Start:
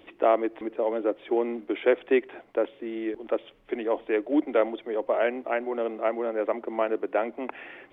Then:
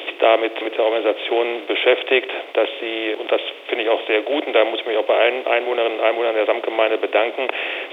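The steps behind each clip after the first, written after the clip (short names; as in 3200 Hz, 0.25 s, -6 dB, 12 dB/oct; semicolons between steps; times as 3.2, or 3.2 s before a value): per-bin compression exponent 0.6; HPF 400 Hz 24 dB/oct; resonant high shelf 2200 Hz +11 dB, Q 1.5; gain +6 dB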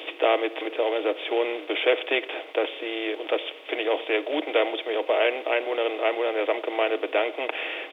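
comb 6.4 ms, depth 39%; gain -7 dB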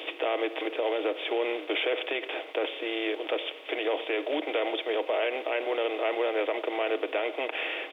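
limiter -18 dBFS, peak gain reduction 9.5 dB; gain -1 dB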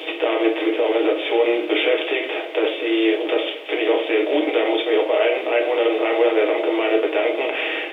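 shoebox room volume 42 m³, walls mixed, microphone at 0.66 m; gain +5 dB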